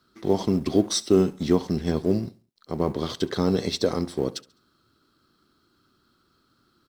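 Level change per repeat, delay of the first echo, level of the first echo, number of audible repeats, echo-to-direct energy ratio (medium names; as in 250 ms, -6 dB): -7.5 dB, 69 ms, -22.0 dB, 2, -21.0 dB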